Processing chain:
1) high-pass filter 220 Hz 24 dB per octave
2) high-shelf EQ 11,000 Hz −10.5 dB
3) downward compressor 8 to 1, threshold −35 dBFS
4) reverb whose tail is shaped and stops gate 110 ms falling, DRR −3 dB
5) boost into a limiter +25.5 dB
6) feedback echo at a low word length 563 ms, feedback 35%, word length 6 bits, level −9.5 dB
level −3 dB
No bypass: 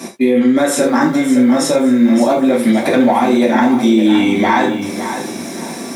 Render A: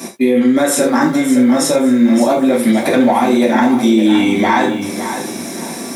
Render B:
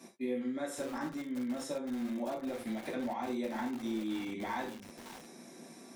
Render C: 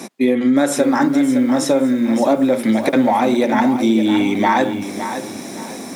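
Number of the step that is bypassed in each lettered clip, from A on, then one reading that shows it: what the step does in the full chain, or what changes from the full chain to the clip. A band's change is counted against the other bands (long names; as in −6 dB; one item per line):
2, 8 kHz band +3.0 dB
5, change in crest factor +2.0 dB
4, change in crest factor +2.0 dB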